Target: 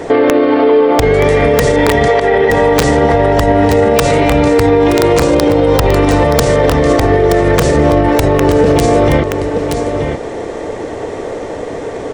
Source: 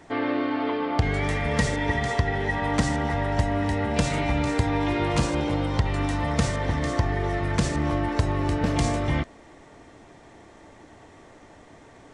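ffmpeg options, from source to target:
ffmpeg -i in.wav -filter_complex "[0:a]equalizer=frequency=470:width_type=o:width=0.74:gain=15,acompressor=threshold=-22dB:ratio=6,aeval=exprs='(mod(5.62*val(0)+1,2)-1)/5.62':channel_layout=same,asettb=1/sr,asplit=3[link_01][link_02][link_03];[link_01]atrim=end=2.084[link_04];[link_02]atrim=start=2.08:end=2.5,asetpts=PTS-STARTPTS,afade=type=in:duration=0.004:curve=qsin,afade=type=out:start_time=0.416:duration=0.004:curve=qsin,highpass=330,lowpass=3800[link_05];[link_03]atrim=start=2.496[link_06];[link_04][link_05]acrossfade=duration=0.004:curve1=hsin:curve2=qsin[link_07];[link_07][link_06]acrossfade=duration=0.004:curve1=qsin:curve2=hsin,aecho=1:1:925:0.251,alimiter=level_in=21.5dB:limit=-1dB:release=50:level=0:latency=1,volume=-1dB" out.wav

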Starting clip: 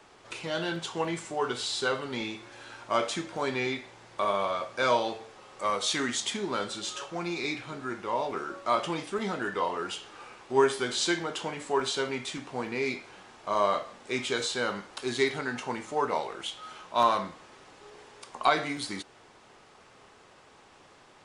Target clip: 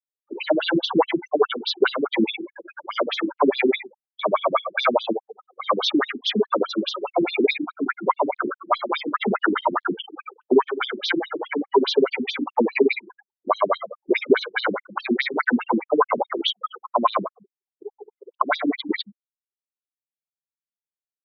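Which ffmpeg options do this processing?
ffmpeg -i in.wav -filter_complex "[0:a]asettb=1/sr,asplit=3[link_01][link_02][link_03];[link_01]atrim=end=7.544[link_04];[link_02]atrim=start=7.54:end=9.96,asetpts=PTS-STARTPTS,afade=type=in:duration=0.004:curve=qsin,afade=type=out:start_time=2.416:duration=0.004:curve=qsin,acrossover=split=500[link_05][link_06];[link_05]adelay=40[link_07];[link_07][link_06]amix=inputs=2:normalize=0,atrim=end_sample=106722[link_08];[link_03]atrim=start=9.956[link_09];[link_04][link_08]acrossfade=duration=0.004:curve1=hsin:curve2=qsin[link_10];[link_10][link_09]acrossfade=duration=0.004:curve1=qsin:curve2=hsin,afftfilt=real='re*gte(hypot(re,im),0.0126)':imag='im*gte(hypot(re,im),0.0126)':win_size=1024:overlap=0.75,acrossover=split=190|7900[link_11][link_12][link_13];[link_11]acompressor=threshold=-46dB:ratio=4[link_14];[link_12]acompressor=threshold=-31dB:ratio=4[link_15];[link_13]acompressor=threshold=-53dB:ratio=4[link_16];[link_14][link_15][link_16]amix=inputs=3:normalize=0,bandreject=frequency=50:width_type=h:width=6,bandreject=frequency=100:width_type=h:width=6,bandreject=frequency=150:width_type=h:width=6,bandreject=frequency=200:width_type=h:width=6,agate=range=-55dB:threshold=-57dB:ratio=16:detection=peak,lowshelf=frequency=120:gain=-3,acrossover=split=3900[link_17][link_18];[link_18]acompressor=threshold=-47dB:ratio=4:attack=1:release=60[link_19];[link_17][link_19]amix=inputs=2:normalize=0,highshelf=frequency=3200:gain=-10.5,alimiter=level_in=23dB:limit=-1dB:release=50:level=0:latency=1,afftfilt=real='re*between(b*sr/1024,240*pow(4700/240,0.5+0.5*sin(2*PI*4.8*pts/sr))/1.41,240*pow(4700/240,0.5+0.5*sin(2*PI*4.8*pts/sr))*1.41)':imag='im*between(b*sr/1024,240*pow(4700/240,0.5+0.5*sin(2*PI*4.8*pts/sr))/1.41,240*pow(4700/240,0.5+0.5*sin(2*PI*4.8*pts/sr))*1.41)':win_size=1024:overlap=0.75" out.wav

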